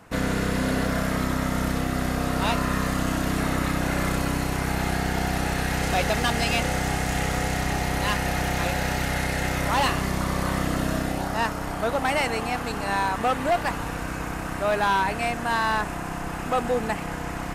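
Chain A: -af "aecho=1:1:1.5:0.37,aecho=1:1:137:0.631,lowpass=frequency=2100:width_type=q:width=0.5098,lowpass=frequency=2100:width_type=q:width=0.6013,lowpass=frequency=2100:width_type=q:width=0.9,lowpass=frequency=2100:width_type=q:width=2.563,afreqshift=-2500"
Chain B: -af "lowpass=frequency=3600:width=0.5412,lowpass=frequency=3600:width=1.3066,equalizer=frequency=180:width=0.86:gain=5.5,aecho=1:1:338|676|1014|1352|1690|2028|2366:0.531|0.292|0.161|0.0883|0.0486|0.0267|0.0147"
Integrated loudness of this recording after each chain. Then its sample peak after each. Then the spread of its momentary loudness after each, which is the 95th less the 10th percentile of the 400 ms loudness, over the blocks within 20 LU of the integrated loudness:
−21.0, −22.0 LKFS; −9.0, −9.5 dBFS; 4, 3 LU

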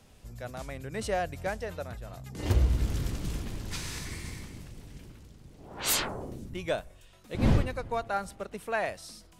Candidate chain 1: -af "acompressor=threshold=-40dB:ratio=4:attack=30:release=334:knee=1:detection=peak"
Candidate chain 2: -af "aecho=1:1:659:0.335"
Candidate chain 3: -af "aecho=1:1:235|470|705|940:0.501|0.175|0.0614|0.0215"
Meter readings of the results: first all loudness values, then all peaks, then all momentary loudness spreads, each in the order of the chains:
−42.5, −32.0, −31.5 LKFS; −26.5, −12.0, −12.0 dBFS; 8, 20, 19 LU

